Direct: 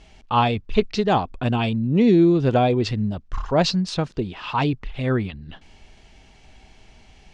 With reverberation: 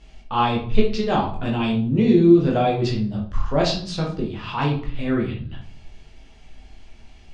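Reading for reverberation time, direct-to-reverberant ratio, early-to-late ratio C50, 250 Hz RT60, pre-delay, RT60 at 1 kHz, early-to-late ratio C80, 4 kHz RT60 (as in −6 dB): 0.50 s, −2.5 dB, 6.0 dB, 0.80 s, 14 ms, 0.50 s, 11.5 dB, 0.40 s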